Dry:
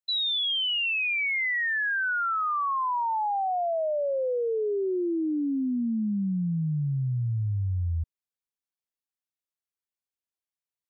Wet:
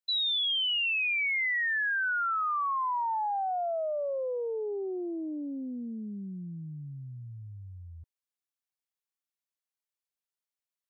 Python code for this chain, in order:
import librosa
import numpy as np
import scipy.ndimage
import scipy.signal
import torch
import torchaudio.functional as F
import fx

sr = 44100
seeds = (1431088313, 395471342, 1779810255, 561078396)

y = fx.highpass(x, sr, hz=570.0, slope=6)
y = fx.doppler_dist(y, sr, depth_ms=0.14)
y = y * librosa.db_to_amplitude(-1.5)